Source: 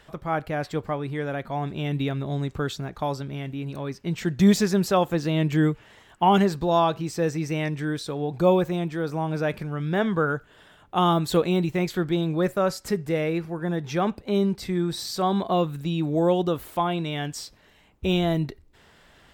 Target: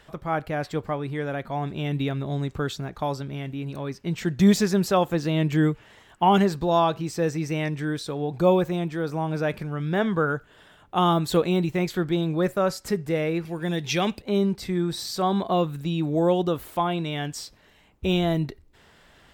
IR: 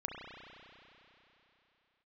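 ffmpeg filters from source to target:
-filter_complex "[0:a]asettb=1/sr,asplit=3[s0][s1][s2];[s0]atrim=end=13.454[s3];[s1]atrim=start=13.45:end=14.22,asetpts=PTS-STARTPTS,afade=t=in:d=0.004:c=qsin,afade=t=out:st=0.766:d=0.004:c=qsin,highshelf=f=1900:t=q:w=1.5:g=9[s4];[s2]atrim=start=14.216[s5];[s3][s4]acrossfade=d=0.004:c1=hsin:c2=qsin[s6];[s6][s5]acrossfade=d=0.004:c1=qsin:c2=hsin"

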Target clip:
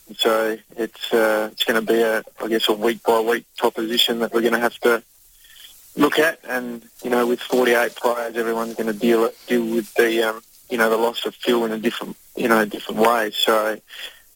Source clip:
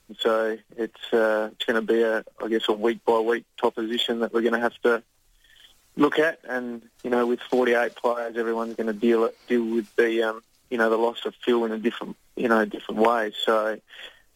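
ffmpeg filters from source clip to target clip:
-filter_complex "[0:a]aemphasis=mode=production:type=75kf,asplit=3[s0][s1][s2];[s1]asetrate=33038,aresample=44100,atempo=1.33484,volume=0.141[s3];[s2]asetrate=66075,aresample=44100,atempo=0.66742,volume=0.2[s4];[s0][s3][s4]amix=inputs=3:normalize=0,volume=1.41"

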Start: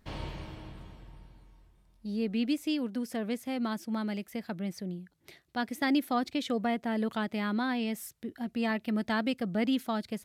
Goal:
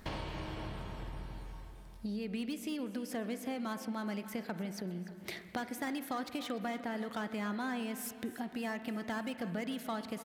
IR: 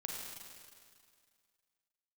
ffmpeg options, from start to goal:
-filter_complex "[0:a]acrossover=split=1300[s0][s1];[s0]alimiter=level_in=1.68:limit=0.0631:level=0:latency=1,volume=0.596[s2];[s1]asoftclip=type=hard:threshold=0.0106[s3];[s2][s3]amix=inputs=2:normalize=0,acompressor=threshold=0.00355:ratio=5,lowshelf=f=430:g=-5.5,aecho=1:1:296|592|888|1184|1480:0.158|0.0888|0.0497|0.0278|0.0156,asplit=2[s4][s5];[1:a]atrim=start_sample=2205,lowpass=2300[s6];[s5][s6]afir=irnorm=-1:irlink=0,volume=0.531[s7];[s4][s7]amix=inputs=2:normalize=0,volume=3.98"

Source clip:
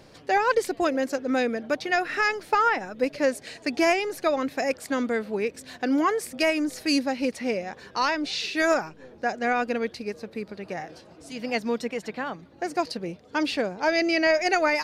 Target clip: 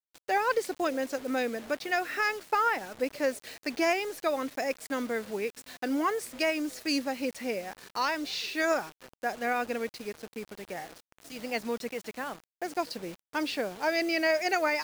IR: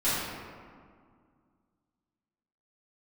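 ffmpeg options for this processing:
-af "lowshelf=f=130:g=-11,acrusher=bits=6:mix=0:aa=0.000001,volume=0.596"

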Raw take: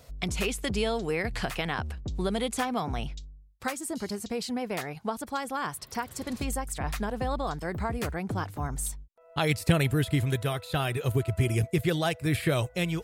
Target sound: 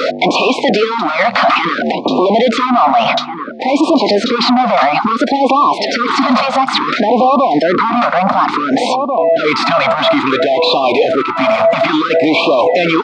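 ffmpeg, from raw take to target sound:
-filter_complex "[0:a]asplit=2[s0][s1];[s1]highpass=f=720:p=1,volume=63.1,asoftclip=type=tanh:threshold=0.282[s2];[s0][s2]amix=inputs=2:normalize=0,lowpass=f=1600:p=1,volume=0.501,highpass=f=270:w=0.5412,highpass=f=270:w=1.3066,equalizer=f=270:t=q:w=4:g=4,equalizer=f=400:t=q:w=4:g=-6,equalizer=f=690:t=q:w=4:g=4,equalizer=f=1200:t=q:w=4:g=9,equalizer=f=1700:t=q:w=4:g=-10,equalizer=f=2900:t=q:w=4:g=-6,lowpass=f=4200:w=0.5412,lowpass=f=4200:w=1.3066,asplit=2[s3][s4];[s4]adelay=1691,volume=0.141,highshelf=f=4000:g=-38[s5];[s3][s5]amix=inputs=2:normalize=0,alimiter=level_in=15:limit=0.891:release=50:level=0:latency=1,afftfilt=real='re*(1-between(b*sr/1024,350*pow(1700/350,0.5+0.5*sin(2*PI*0.58*pts/sr))/1.41,350*pow(1700/350,0.5+0.5*sin(2*PI*0.58*pts/sr))*1.41))':imag='im*(1-between(b*sr/1024,350*pow(1700/350,0.5+0.5*sin(2*PI*0.58*pts/sr))/1.41,350*pow(1700/350,0.5+0.5*sin(2*PI*0.58*pts/sr))*1.41))':win_size=1024:overlap=0.75,volume=0.794"

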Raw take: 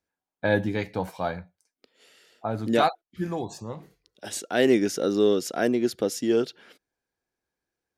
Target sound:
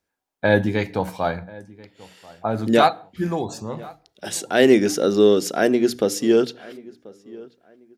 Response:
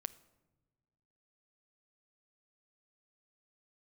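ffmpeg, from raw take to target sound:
-filter_complex "[0:a]bandreject=f=60:t=h:w=6,bandreject=f=120:t=h:w=6,bandreject=f=180:t=h:w=6,bandreject=f=240:t=h:w=6,bandreject=f=300:t=h:w=6,asplit=2[s0][s1];[s1]adelay=1036,lowpass=f=2100:p=1,volume=0.0794,asplit=2[s2][s3];[s3]adelay=1036,lowpass=f=2100:p=1,volume=0.27[s4];[s0][s2][s4]amix=inputs=3:normalize=0,asplit=2[s5][s6];[1:a]atrim=start_sample=2205,afade=t=out:st=0.34:d=0.01,atrim=end_sample=15435,asetrate=61740,aresample=44100[s7];[s6][s7]afir=irnorm=-1:irlink=0,volume=1.88[s8];[s5][s8]amix=inputs=2:normalize=0"

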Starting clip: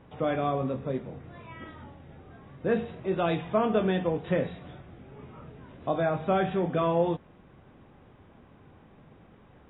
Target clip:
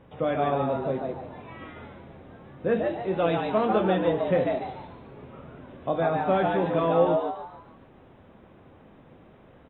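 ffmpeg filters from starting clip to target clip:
-filter_complex "[0:a]equalizer=f=530:t=o:w=0.25:g=5.5,asplit=6[s0][s1][s2][s3][s4][s5];[s1]adelay=145,afreqshift=120,volume=0.631[s6];[s2]adelay=290,afreqshift=240,volume=0.226[s7];[s3]adelay=435,afreqshift=360,volume=0.0822[s8];[s4]adelay=580,afreqshift=480,volume=0.0295[s9];[s5]adelay=725,afreqshift=600,volume=0.0106[s10];[s0][s6][s7][s8][s9][s10]amix=inputs=6:normalize=0"

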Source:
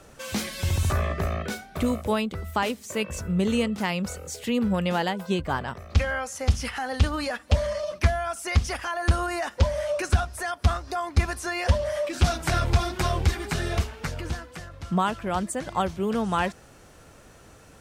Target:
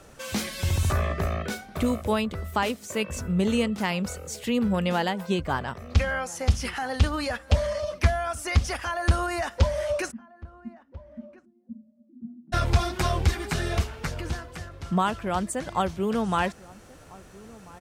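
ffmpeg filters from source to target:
-filter_complex "[0:a]asplit=3[s0][s1][s2];[s0]afade=t=out:st=10.1:d=0.02[s3];[s1]asuperpass=centerf=230:order=4:qfactor=6.4,afade=t=in:st=10.1:d=0.02,afade=t=out:st=12.52:d=0.02[s4];[s2]afade=t=in:st=12.52:d=0.02[s5];[s3][s4][s5]amix=inputs=3:normalize=0,asplit=2[s6][s7];[s7]adelay=1341,volume=0.0891,highshelf=f=4000:g=-30.2[s8];[s6][s8]amix=inputs=2:normalize=0"

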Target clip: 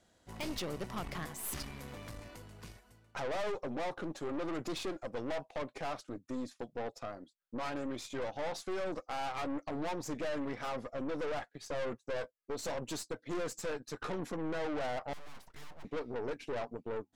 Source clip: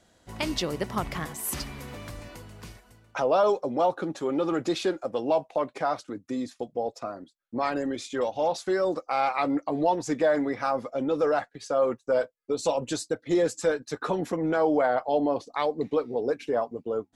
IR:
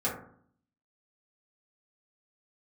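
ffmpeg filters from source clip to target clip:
-filter_complex "[0:a]asettb=1/sr,asplit=3[s0][s1][s2];[s0]atrim=end=15.134[s3];[s1]atrim=start=15.13:end=15.85,asetpts=PTS-STARTPTS,afade=t=in:d=0.004:c=qsin,afade=t=out:st=0.716:d=0.004:c=qsin,aeval=exprs='abs(val(0))':c=same[s4];[s2]atrim=start=15.846[s5];[s3][s4]acrossfade=d=0.004:c1=hsin:c2=qsin[s6];[s6][s5]acrossfade=d=0.004:c1=qsin:c2=hsin,aeval=exprs='(tanh(35.5*val(0)+0.65)-tanh(0.65))/35.5':c=same,volume=0.668"

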